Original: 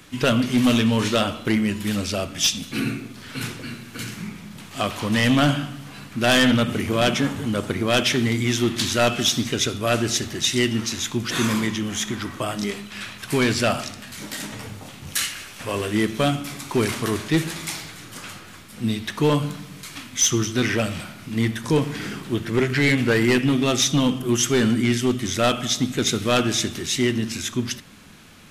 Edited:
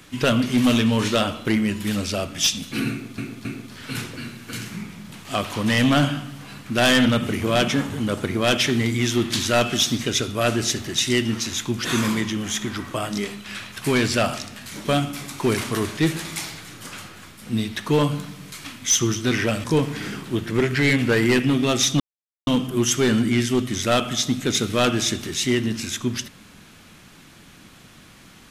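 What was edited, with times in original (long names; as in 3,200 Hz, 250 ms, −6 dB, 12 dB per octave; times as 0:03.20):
0:02.91–0:03.18: repeat, 3 plays
0:14.31–0:16.16: remove
0:20.95–0:21.63: remove
0:23.99: splice in silence 0.47 s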